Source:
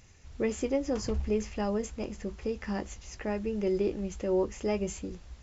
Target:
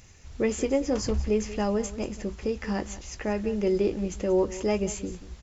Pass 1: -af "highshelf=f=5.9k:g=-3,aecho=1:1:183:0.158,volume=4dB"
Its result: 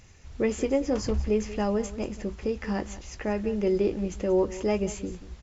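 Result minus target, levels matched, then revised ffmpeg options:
8000 Hz band -4.0 dB
-af "highshelf=f=5.9k:g=4,aecho=1:1:183:0.158,volume=4dB"

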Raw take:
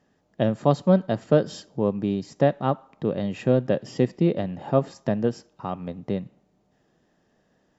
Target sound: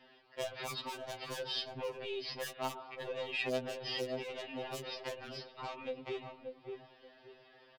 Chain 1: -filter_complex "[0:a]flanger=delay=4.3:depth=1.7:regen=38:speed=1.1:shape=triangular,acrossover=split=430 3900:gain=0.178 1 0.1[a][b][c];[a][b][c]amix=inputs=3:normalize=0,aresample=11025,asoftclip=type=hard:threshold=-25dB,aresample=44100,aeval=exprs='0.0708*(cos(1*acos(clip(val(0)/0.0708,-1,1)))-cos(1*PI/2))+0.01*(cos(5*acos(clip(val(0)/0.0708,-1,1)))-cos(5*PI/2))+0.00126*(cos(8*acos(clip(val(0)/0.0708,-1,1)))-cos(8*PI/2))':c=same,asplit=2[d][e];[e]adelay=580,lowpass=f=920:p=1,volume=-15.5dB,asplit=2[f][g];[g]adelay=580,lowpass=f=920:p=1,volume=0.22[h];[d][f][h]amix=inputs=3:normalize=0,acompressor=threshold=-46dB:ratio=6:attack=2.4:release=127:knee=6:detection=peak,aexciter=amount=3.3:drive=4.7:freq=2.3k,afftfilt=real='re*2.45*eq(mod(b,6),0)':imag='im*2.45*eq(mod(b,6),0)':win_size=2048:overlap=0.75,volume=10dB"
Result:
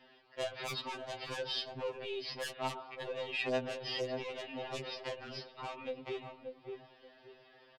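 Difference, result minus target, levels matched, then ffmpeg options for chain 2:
hard clip: distortion +20 dB
-filter_complex "[0:a]flanger=delay=4.3:depth=1.7:regen=38:speed=1.1:shape=triangular,acrossover=split=430 3900:gain=0.178 1 0.1[a][b][c];[a][b][c]amix=inputs=3:normalize=0,aresample=11025,asoftclip=type=hard:threshold=-15.5dB,aresample=44100,aeval=exprs='0.0708*(cos(1*acos(clip(val(0)/0.0708,-1,1)))-cos(1*PI/2))+0.01*(cos(5*acos(clip(val(0)/0.0708,-1,1)))-cos(5*PI/2))+0.00126*(cos(8*acos(clip(val(0)/0.0708,-1,1)))-cos(8*PI/2))':c=same,asplit=2[d][e];[e]adelay=580,lowpass=f=920:p=1,volume=-15.5dB,asplit=2[f][g];[g]adelay=580,lowpass=f=920:p=1,volume=0.22[h];[d][f][h]amix=inputs=3:normalize=0,acompressor=threshold=-46dB:ratio=6:attack=2.4:release=127:knee=6:detection=peak,aexciter=amount=3.3:drive=4.7:freq=2.3k,afftfilt=real='re*2.45*eq(mod(b,6),0)':imag='im*2.45*eq(mod(b,6),0)':win_size=2048:overlap=0.75,volume=10dB"

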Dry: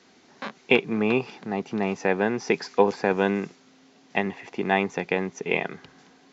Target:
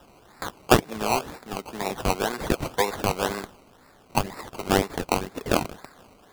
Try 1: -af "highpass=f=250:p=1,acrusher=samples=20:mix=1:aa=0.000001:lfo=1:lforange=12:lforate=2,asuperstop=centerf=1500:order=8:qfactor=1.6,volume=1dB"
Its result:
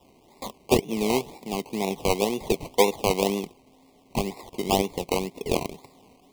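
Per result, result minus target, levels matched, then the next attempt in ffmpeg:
2000 Hz band -4.0 dB; 1000 Hz band -3.0 dB
-af "highpass=f=250:p=1,acrusher=samples=20:mix=1:aa=0.000001:lfo=1:lforange=12:lforate=2,volume=1dB"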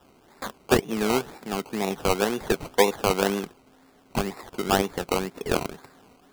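1000 Hz band -2.5 dB
-af "highpass=f=250:p=1,tiltshelf=f=1.1k:g=-9,acrusher=samples=20:mix=1:aa=0.000001:lfo=1:lforange=12:lforate=2,volume=1dB"

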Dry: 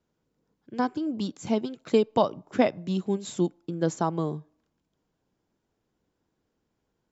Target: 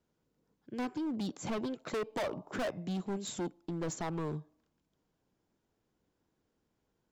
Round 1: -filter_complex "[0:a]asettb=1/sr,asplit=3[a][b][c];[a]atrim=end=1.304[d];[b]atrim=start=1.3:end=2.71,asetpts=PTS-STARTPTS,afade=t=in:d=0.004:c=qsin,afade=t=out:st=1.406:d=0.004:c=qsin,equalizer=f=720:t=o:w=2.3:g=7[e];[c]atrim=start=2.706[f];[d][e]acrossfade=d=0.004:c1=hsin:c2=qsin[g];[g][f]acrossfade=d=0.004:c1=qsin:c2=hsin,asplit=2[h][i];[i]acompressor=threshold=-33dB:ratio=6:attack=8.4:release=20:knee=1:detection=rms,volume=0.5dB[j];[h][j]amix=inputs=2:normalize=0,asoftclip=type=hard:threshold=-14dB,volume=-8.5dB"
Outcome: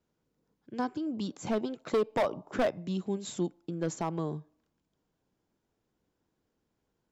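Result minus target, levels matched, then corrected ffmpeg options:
hard clip: distortion -6 dB
-filter_complex "[0:a]asettb=1/sr,asplit=3[a][b][c];[a]atrim=end=1.304[d];[b]atrim=start=1.3:end=2.71,asetpts=PTS-STARTPTS,afade=t=in:d=0.004:c=qsin,afade=t=out:st=1.406:d=0.004:c=qsin,equalizer=f=720:t=o:w=2.3:g=7[e];[c]atrim=start=2.706[f];[d][e]acrossfade=d=0.004:c1=hsin:c2=qsin[g];[g][f]acrossfade=d=0.004:c1=qsin:c2=hsin,asplit=2[h][i];[i]acompressor=threshold=-33dB:ratio=6:attack=8.4:release=20:knee=1:detection=rms,volume=0.5dB[j];[h][j]amix=inputs=2:normalize=0,asoftclip=type=hard:threshold=-23.5dB,volume=-8.5dB"

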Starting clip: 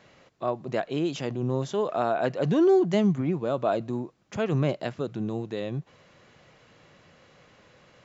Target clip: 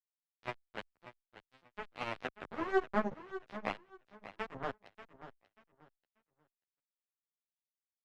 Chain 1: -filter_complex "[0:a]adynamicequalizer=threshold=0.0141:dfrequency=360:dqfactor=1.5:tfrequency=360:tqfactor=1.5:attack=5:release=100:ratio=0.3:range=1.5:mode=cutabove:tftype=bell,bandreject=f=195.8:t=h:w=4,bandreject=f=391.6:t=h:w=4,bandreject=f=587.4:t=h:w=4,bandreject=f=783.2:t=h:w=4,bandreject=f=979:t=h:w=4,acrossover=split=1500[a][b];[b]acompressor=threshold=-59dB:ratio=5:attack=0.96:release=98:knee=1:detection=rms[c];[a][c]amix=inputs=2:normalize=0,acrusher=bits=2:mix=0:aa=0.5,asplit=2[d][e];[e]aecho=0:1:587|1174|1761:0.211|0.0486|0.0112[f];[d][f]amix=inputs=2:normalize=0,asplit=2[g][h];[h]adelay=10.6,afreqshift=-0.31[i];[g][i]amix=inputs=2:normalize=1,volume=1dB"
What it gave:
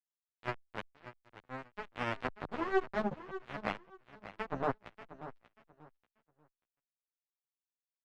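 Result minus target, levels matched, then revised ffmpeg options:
125 Hz band +5.0 dB
-filter_complex "[0:a]adynamicequalizer=threshold=0.0141:dfrequency=360:dqfactor=1.5:tfrequency=360:tqfactor=1.5:attack=5:release=100:ratio=0.3:range=1.5:mode=cutabove:tftype=bell,highpass=120,bandreject=f=195.8:t=h:w=4,bandreject=f=391.6:t=h:w=4,bandreject=f=587.4:t=h:w=4,bandreject=f=783.2:t=h:w=4,bandreject=f=979:t=h:w=4,acrossover=split=1500[a][b];[b]acompressor=threshold=-59dB:ratio=5:attack=0.96:release=98:knee=1:detection=rms[c];[a][c]amix=inputs=2:normalize=0,acrusher=bits=2:mix=0:aa=0.5,asplit=2[d][e];[e]aecho=0:1:587|1174|1761:0.211|0.0486|0.0112[f];[d][f]amix=inputs=2:normalize=0,asplit=2[g][h];[h]adelay=10.6,afreqshift=-0.31[i];[g][i]amix=inputs=2:normalize=1,volume=1dB"

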